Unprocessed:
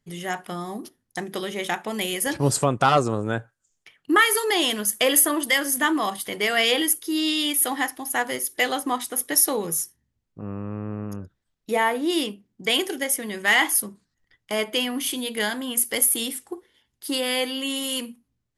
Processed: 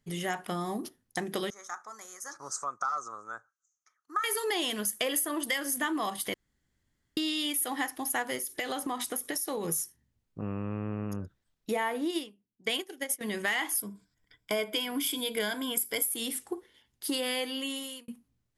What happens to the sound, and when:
1.5–4.24 double band-pass 2800 Hz, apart 2.3 oct
6.34–7.17 room tone
8.38–9.69 compressor, threshold -28 dBFS
10.42–11.12 bell 2700 Hz +7 dB
12.08–13.21 upward expander 2.5:1, over -33 dBFS
13.77–16.07 ripple EQ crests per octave 1.7, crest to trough 10 dB
17.26–18.08 fade out linear
whole clip: compressor 4:1, threshold -29 dBFS

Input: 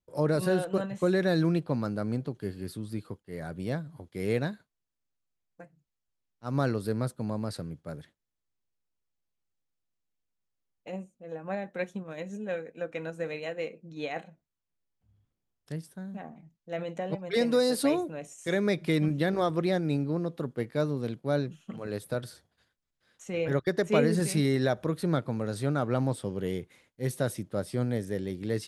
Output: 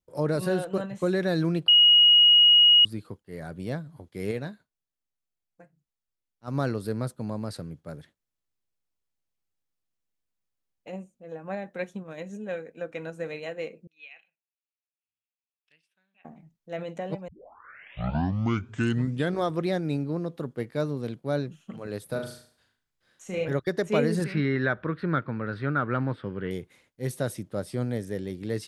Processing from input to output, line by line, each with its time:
1.68–2.85 bleep 2890 Hz -13 dBFS
4.31–6.48 flange 1.3 Hz, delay 4.7 ms, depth 1.1 ms, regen -78%
13.87–16.25 band-pass 2600 Hz, Q 7.6
17.28 tape start 2.14 s
22.05–23.45 flutter echo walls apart 6.4 m, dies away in 0.47 s
24.24–26.51 EQ curve 360 Hz 0 dB, 740 Hz -5 dB, 1500 Hz +11 dB, 4800 Hz -10 dB, 6900 Hz -29 dB

